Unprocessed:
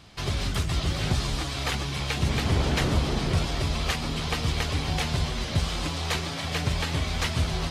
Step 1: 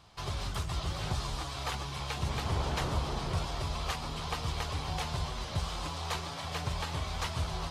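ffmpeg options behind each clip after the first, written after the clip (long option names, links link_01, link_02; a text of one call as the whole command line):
ffmpeg -i in.wav -af "equalizer=frequency=250:width_type=o:width=1:gain=-6,equalizer=frequency=1000:width_type=o:width=1:gain=7,equalizer=frequency=2000:width_type=o:width=1:gain=-4,volume=-7.5dB" out.wav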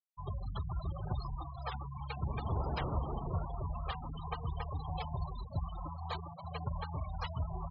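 ffmpeg -i in.wav -af "afftfilt=real='re*gte(hypot(re,im),0.0316)':imag='im*gte(hypot(re,im),0.0316)':win_size=1024:overlap=0.75,volume=-2.5dB" out.wav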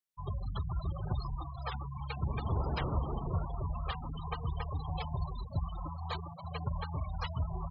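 ffmpeg -i in.wav -af "equalizer=frequency=740:width_type=o:width=0.77:gain=-3.5,volume=2.5dB" out.wav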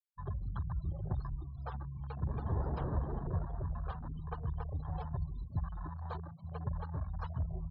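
ffmpeg -i in.wav -af "adynamicequalizer=threshold=0.002:dfrequency=1300:dqfactor=1.2:tfrequency=1300:tqfactor=1.2:attack=5:release=100:ratio=0.375:range=2:mode=cutabove:tftype=bell,afwtdn=0.00891,volume=-1.5dB" out.wav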